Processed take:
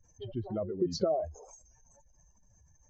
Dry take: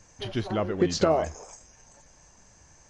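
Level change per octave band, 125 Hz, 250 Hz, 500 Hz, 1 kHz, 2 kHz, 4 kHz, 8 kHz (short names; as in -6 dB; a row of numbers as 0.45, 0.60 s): -7.5 dB, -7.0 dB, -6.0 dB, -10.0 dB, under -25 dB, -9.5 dB, -10.5 dB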